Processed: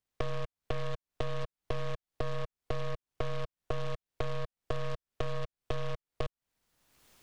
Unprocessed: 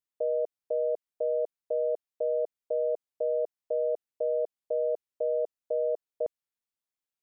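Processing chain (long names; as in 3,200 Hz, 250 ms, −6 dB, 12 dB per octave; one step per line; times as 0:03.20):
stylus tracing distortion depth 0.45 ms
camcorder AGC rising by 37 dB per second
low-shelf EQ 200 Hz +11.5 dB
downward compressor 6 to 1, threshold −32 dBFS, peak gain reduction 14 dB
short delay modulated by noise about 1,900 Hz, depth 0.07 ms
level +1 dB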